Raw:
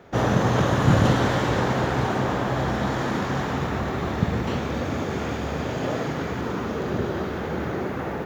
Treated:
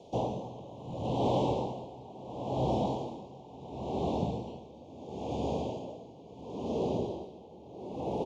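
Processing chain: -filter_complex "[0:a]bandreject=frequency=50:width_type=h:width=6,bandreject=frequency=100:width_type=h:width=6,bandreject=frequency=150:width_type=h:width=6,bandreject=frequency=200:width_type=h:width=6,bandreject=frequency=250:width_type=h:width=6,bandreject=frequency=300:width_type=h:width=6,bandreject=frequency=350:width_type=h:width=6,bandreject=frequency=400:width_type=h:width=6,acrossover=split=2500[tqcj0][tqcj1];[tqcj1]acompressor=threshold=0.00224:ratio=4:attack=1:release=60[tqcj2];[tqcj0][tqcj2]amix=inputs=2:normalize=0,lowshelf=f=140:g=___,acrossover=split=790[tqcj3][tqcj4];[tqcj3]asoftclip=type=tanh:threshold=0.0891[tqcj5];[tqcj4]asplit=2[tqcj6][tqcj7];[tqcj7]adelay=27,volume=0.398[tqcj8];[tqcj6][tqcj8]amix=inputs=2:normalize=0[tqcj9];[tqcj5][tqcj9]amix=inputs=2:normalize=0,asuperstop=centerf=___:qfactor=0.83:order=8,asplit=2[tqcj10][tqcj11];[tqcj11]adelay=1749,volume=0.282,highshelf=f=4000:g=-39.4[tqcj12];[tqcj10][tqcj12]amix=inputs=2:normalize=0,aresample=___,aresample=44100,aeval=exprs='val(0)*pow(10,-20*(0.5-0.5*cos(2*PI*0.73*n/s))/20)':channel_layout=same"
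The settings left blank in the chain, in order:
-10, 1600, 22050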